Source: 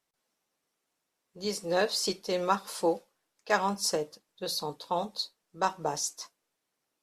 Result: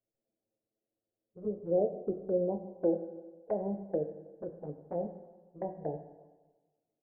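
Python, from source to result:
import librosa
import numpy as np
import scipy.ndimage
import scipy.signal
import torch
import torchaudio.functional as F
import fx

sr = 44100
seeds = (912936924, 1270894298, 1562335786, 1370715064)

y = scipy.signal.sosfilt(scipy.signal.butter(8, 670.0, 'lowpass', fs=sr, output='sos'), x)
y = fx.env_flanger(y, sr, rest_ms=9.1, full_db=-30.5)
y = fx.rev_fdn(y, sr, rt60_s=1.3, lf_ratio=0.95, hf_ratio=0.75, size_ms=55.0, drr_db=6.5)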